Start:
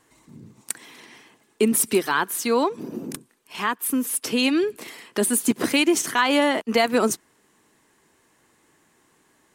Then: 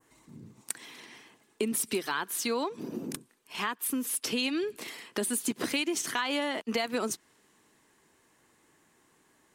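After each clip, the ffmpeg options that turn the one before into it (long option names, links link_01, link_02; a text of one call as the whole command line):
ffmpeg -i in.wav -af "adynamicequalizer=threshold=0.0126:dfrequency=3900:dqfactor=0.72:tfrequency=3900:tqfactor=0.72:attack=5:release=100:ratio=0.375:range=2.5:mode=boostabove:tftype=bell,acompressor=threshold=-25dB:ratio=3,volume=-4dB" out.wav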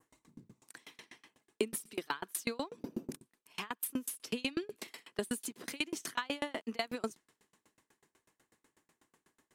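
ffmpeg -i in.wav -af "aeval=exprs='val(0)*pow(10,-32*if(lt(mod(8.1*n/s,1),2*abs(8.1)/1000),1-mod(8.1*n/s,1)/(2*abs(8.1)/1000),(mod(8.1*n/s,1)-2*abs(8.1)/1000)/(1-2*abs(8.1)/1000))/20)':channel_layout=same,volume=1dB" out.wav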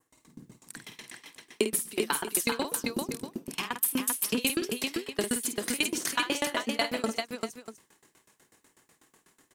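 ffmpeg -i in.wav -af "highshelf=frequency=4100:gain=5.5,aecho=1:1:50|137|392|641:0.398|0.112|0.668|0.224,dynaudnorm=framelen=100:gausssize=3:maxgain=8dB,volume=-2.5dB" out.wav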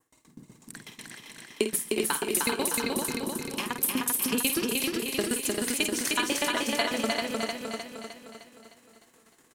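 ffmpeg -i in.wav -af "aecho=1:1:306|612|918|1224|1530|1836|2142:0.708|0.368|0.191|0.0995|0.0518|0.0269|0.014" out.wav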